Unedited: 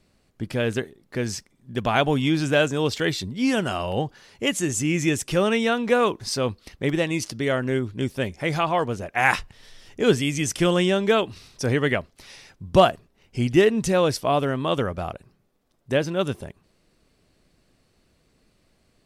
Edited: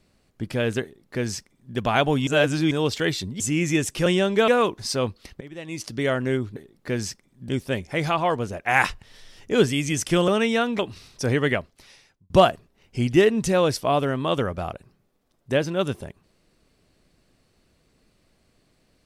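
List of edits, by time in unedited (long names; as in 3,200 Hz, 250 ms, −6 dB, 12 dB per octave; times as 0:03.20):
0:00.83–0:01.76: duplicate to 0:07.98
0:02.27–0:02.71: reverse
0:03.40–0:04.73: remove
0:05.39–0:05.90: swap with 0:10.77–0:11.19
0:06.83–0:07.37: fade in quadratic, from −19.5 dB
0:11.92–0:12.70: fade out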